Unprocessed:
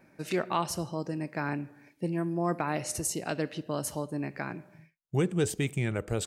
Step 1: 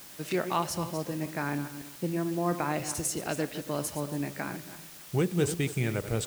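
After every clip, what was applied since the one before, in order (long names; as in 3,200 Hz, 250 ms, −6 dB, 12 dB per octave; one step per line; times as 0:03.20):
feedback delay that plays each chunk backwards 140 ms, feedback 42%, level −10.5 dB
bit-depth reduction 8 bits, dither triangular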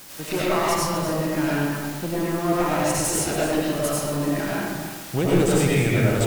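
asymmetric clip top −31 dBFS
convolution reverb RT60 1.2 s, pre-delay 55 ms, DRR −6.5 dB
level +4.5 dB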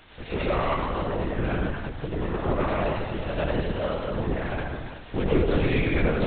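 linear-prediction vocoder at 8 kHz whisper
level −3 dB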